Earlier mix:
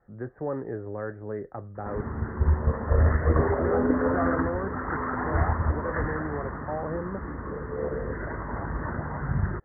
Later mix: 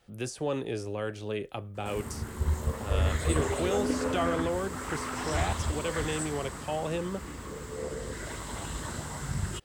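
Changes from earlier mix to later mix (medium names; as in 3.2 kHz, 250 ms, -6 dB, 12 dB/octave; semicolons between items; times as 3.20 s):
background -6.0 dB; master: remove steep low-pass 1.9 kHz 96 dB/octave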